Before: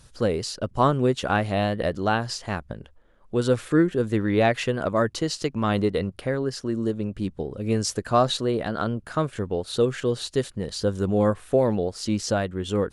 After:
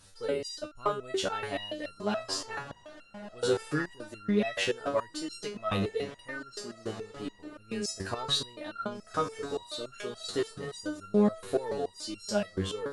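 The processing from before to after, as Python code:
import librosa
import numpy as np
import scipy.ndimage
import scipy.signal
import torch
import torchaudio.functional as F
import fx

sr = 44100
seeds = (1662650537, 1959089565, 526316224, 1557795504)

p1 = 10.0 ** (-18.0 / 20.0) * np.tanh(x / 10.0 ** (-18.0 / 20.0))
p2 = x + (p1 * 10.0 ** (-5.0 / 20.0))
p3 = fx.low_shelf(p2, sr, hz=340.0, db=-8.0)
p4 = fx.echo_diffused(p3, sr, ms=1456, feedback_pct=41, wet_db=-15.5)
p5 = fx.resonator_held(p4, sr, hz=7.0, low_hz=96.0, high_hz=1400.0)
y = p5 * 10.0 ** (5.5 / 20.0)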